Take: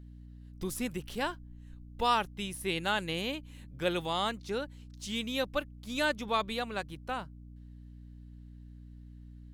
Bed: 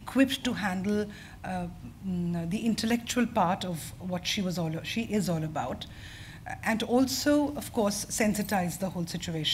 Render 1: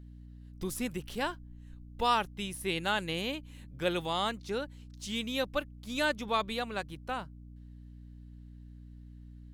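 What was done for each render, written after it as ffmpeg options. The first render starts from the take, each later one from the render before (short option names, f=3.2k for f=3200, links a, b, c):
-af anull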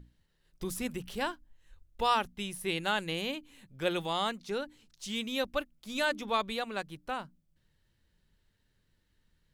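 -af "bandreject=f=60:t=h:w=6,bandreject=f=120:t=h:w=6,bandreject=f=180:t=h:w=6,bandreject=f=240:t=h:w=6,bandreject=f=300:t=h:w=6"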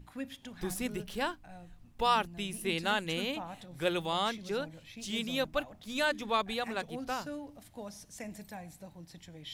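-filter_complex "[1:a]volume=-17dB[a];[0:a][a]amix=inputs=2:normalize=0"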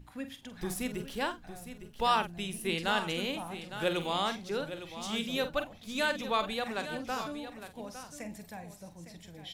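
-filter_complex "[0:a]asplit=2[a][b];[b]adelay=47,volume=-10.5dB[c];[a][c]amix=inputs=2:normalize=0,aecho=1:1:858:0.266"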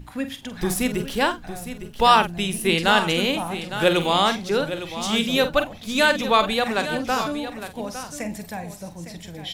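-af "volume=12dB"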